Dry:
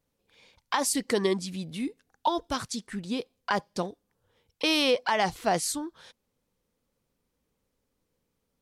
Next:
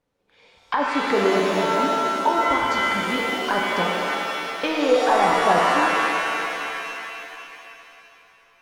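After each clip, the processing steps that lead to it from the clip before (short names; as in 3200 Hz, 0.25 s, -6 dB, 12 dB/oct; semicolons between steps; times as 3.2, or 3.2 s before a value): overdrive pedal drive 7 dB, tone 1400 Hz, clips at -12 dBFS; treble ducked by the level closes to 1500 Hz, closed at -24 dBFS; shimmer reverb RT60 2.9 s, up +7 st, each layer -2 dB, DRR -1.5 dB; gain +4.5 dB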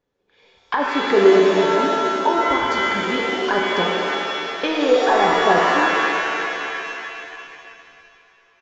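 small resonant body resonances 390/1700/3400 Hz, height 9 dB; in parallel at -8 dB: backlash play -35.5 dBFS; on the sum: downsampling 16000 Hz; gain -2 dB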